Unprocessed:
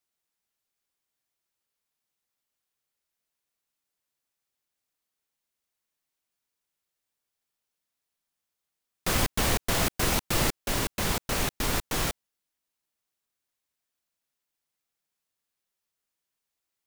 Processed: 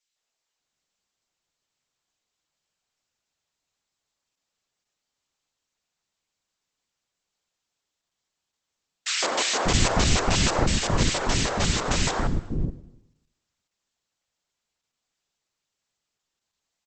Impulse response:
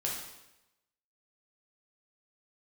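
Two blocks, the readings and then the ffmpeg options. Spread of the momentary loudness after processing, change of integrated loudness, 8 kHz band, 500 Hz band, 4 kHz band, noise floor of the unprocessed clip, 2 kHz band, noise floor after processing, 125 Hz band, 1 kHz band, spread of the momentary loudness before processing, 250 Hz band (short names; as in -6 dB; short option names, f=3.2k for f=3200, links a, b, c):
8 LU, +3.5 dB, +4.0 dB, +5.0 dB, +5.5 dB, -85 dBFS, +3.5 dB, -84 dBFS, +6.5 dB, +5.0 dB, 4 LU, +5.5 dB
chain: -filter_complex "[0:a]acrossover=split=350|1700[a][b][c];[b]adelay=160[d];[a]adelay=590[e];[e][d][c]amix=inputs=3:normalize=0,asplit=2[f][g];[1:a]atrim=start_sample=2205,lowshelf=f=220:g=-3.5,adelay=85[h];[g][h]afir=irnorm=-1:irlink=0,volume=-17.5dB[i];[f][i]amix=inputs=2:normalize=0,volume=7dB" -ar 48000 -c:a libopus -b:a 12k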